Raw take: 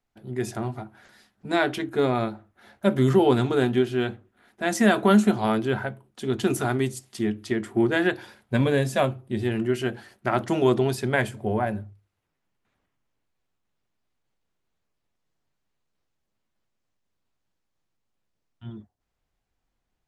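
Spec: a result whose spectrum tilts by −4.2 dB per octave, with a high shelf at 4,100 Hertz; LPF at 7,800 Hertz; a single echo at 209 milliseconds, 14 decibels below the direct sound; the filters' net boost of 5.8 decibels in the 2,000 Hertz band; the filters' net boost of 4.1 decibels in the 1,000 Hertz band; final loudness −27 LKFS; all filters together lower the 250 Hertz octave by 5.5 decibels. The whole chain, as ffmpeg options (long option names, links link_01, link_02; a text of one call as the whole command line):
ffmpeg -i in.wav -af "lowpass=7800,equalizer=frequency=250:width_type=o:gain=-8,equalizer=frequency=1000:width_type=o:gain=5,equalizer=frequency=2000:width_type=o:gain=7,highshelf=frequency=4100:gain=-6.5,aecho=1:1:209:0.2,volume=-2.5dB" out.wav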